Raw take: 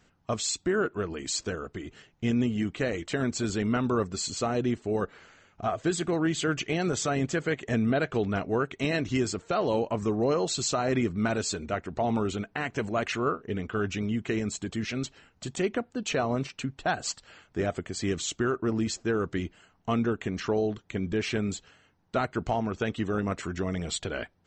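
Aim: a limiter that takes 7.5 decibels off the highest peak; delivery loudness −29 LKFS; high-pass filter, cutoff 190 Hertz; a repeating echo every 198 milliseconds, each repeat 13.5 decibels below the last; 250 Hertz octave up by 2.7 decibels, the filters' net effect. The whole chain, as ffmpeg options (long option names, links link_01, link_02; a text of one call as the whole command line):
ffmpeg -i in.wav -af "highpass=190,equalizer=frequency=250:width_type=o:gain=5,alimiter=limit=-19dB:level=0:latency=1,aecho=1:1:198|396:0.211|0.0444,volume=1dB" out.wav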